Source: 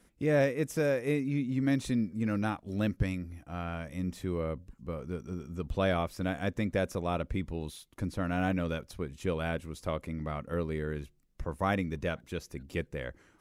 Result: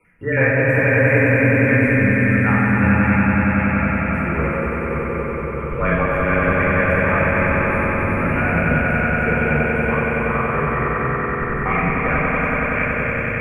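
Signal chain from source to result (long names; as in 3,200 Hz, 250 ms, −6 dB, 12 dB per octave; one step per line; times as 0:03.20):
time-frequency cells dropped at random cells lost 36%
drawn EQ curve 400 Hz 0 dB, 2,500 Hz +13 dB, 3,800 Hz −29 dB, 11,000 Hz −9 dB
echo that builds up and dies away 94 ms, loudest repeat 5, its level −5 dB
rectangular room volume 1,700 cubic metres, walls mixed, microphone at 4.5 metres
frequency shifter −18 Hz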